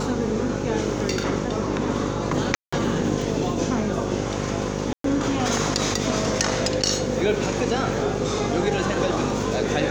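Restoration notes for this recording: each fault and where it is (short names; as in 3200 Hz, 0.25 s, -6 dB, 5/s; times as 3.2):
buzz 50 Hz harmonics 11 -28 dBFS
2.55–2.73 gap 0.175 s
4.93–5.04 gap 0.113 s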